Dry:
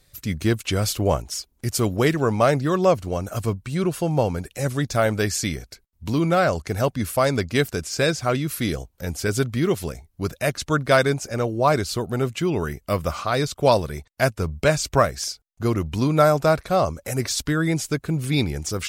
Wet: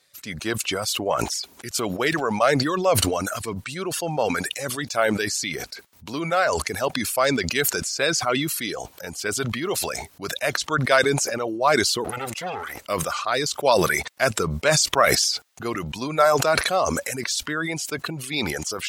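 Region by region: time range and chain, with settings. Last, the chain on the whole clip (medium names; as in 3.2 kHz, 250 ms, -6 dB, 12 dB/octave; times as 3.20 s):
12.04–12.82 s: comb filter that takes the minimum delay 1.5 ms + peaking EQ 150 Hz -7 dB 0.51 oct + band-stop 630 Hz, Q 11
whole clip: frequency weighting A; reverb removal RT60 1.3 s; decay stretcher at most 29 dB/s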